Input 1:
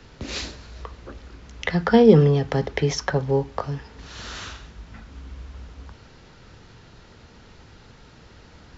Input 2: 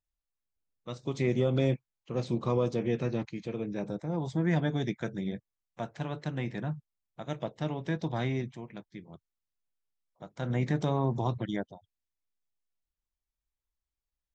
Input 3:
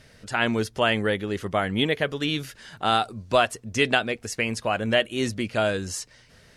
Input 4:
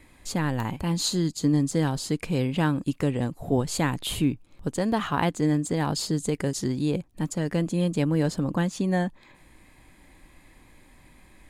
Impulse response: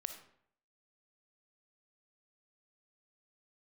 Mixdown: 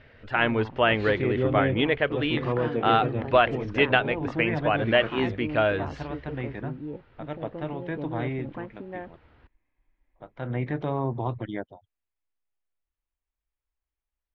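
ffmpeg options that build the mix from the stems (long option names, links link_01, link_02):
-filter_complex "[0:a]acompressor=threshold=-23dB:ratio=6,adelay=700,volume=-8.5dB[link_01];[1:a]volume=2dB[link_02];[2:a]volume=1dB[link_03];[3:a]afwtdn=0.02,volume=-9dB[link_04];[link_01][link_02][link_03][link_04]amix=inputs=4:normalize=0,lowpass=frequency=2900:width=0.5412,lowpass=frequency=2900:width=1.3066,equalizer=frequency=180:width=3.7:gain=-12.5"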